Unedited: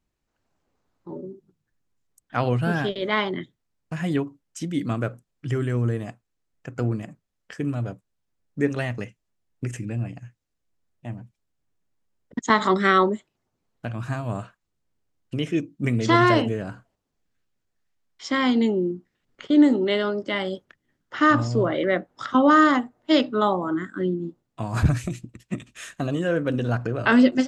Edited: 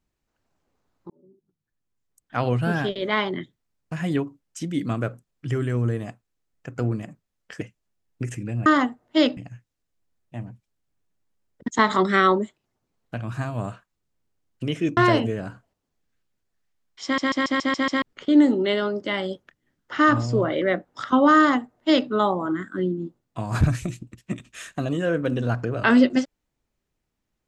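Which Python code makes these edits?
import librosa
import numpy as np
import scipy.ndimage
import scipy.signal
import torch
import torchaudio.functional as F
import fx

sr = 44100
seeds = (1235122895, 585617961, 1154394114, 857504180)

y = fx.edit(x, sr, fx.fade_in_span(start_s=1.1, length_s=1.42),
    fx.cut(start_s=7.61, length_s=1.42),
    fx.cut(start_s=15.68, length_s=0.51),
    fx.stutter_over(start_s=18.26, slice_s=0.14, count=7),
    fx.duplicate(start_s=22.6, length_s=0.71, to_s=10.08), tone=tone)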